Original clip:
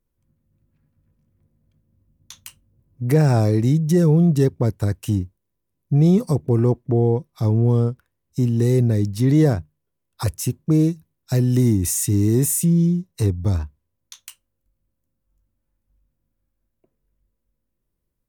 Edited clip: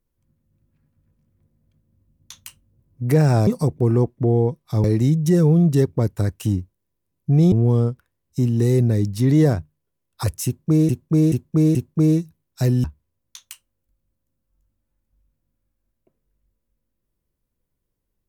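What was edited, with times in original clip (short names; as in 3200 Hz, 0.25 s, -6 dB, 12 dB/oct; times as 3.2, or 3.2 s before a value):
6.15–7.52 move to 3.47
10.46–10.89 loop, 4 plays
11.55–13.61 cut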